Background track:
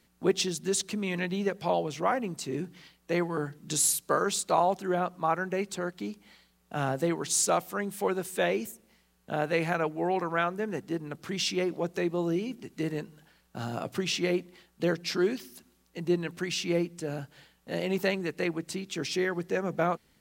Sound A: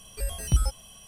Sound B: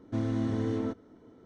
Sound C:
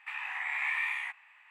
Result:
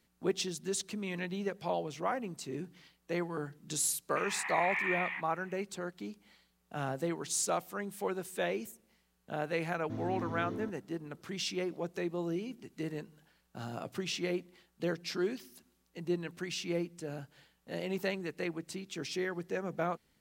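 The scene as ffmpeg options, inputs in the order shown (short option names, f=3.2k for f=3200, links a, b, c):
-filter_complex "[0:a]volume=-6.5dB[a];[3:a]lowpass=3.4k[b];[2:a]aresample=16000,aresample=44100[c];[b]atrim=end=1.5,asetpts=PTS-STARTPTS,volume=-1.5dB,afade=t=in:d=0.004:c=hsin,afade=t=out:st=1.496:d=0.004:c=hsin,adelay=180369S[d];[c]atrim=end=1.45,asetpts=PTS-STARTPTS,volume=-9.5dB,afade=t=in:d=0.004:c=hsin,afade=t=out:st=1.446:d=0.004:c=hsin,adelay=9770[e];[a][d][e]amix=inputs=3:normalize=0"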